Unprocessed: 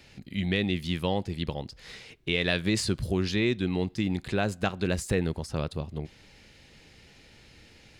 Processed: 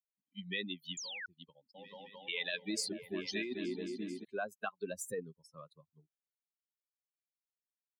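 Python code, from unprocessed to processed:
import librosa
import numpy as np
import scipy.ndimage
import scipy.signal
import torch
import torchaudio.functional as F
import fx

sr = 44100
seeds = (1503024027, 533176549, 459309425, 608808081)

y = fx.bin_expand(x, sr, power=3.0)
y = fx.tilt_shelf(y, sr, db=-3.0, hz=1200.0)
y = fx.echo_opening(y, sr, ms=219, hz=400, octaves=1, feedback_pct=70, wet_db=-6, at=(1.74, 4.23), fade=0.02)
y = fx.rotary(y, sr, hz=0.8)
y = fx.high_shelf(y, sr, hz=11000.0, db=6.0)
y = fx.spec_paint(y, sr, seeds[0], shape='fall', start_s=0.97, length_s=0.29, low_hz=1400.0, high_hz=7400.0, level_db=-26.0)
y = fx.ladder_highpass(y, sr, hz=220.0, resonance_pct=20)
y = fx.over_compress(y, sr, threshold_db=-40.0, ratio=-1.0)
y = y * 10.0 ** (2.5 / 20.0)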